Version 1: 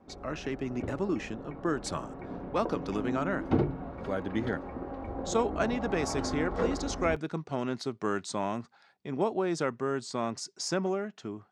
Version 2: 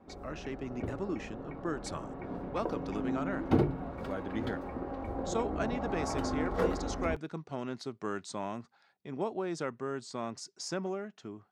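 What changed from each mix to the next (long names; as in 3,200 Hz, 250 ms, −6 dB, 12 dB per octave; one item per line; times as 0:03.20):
speech −5.5 dB
background: remove high-frequency loss of the air 96 metres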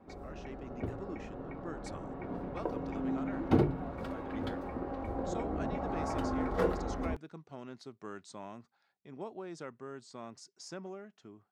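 speech −8.5 dB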